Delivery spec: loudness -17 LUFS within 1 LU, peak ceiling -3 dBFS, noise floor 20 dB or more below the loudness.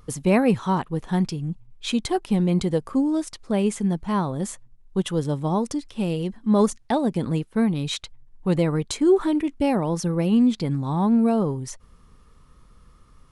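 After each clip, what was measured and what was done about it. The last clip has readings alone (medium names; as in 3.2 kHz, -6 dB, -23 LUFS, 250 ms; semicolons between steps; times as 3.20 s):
loudness -23.5 LUFS; peak level -7.5 dBFS; loudness target -17.0 LUFS
-> trim +6.5 dB; peak limiter -3 dBFS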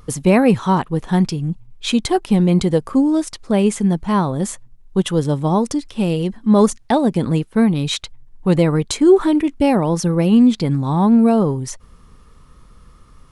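loudness -17.0 LUFS; peak level -3.0 dBFS; noise floor -46 dBFS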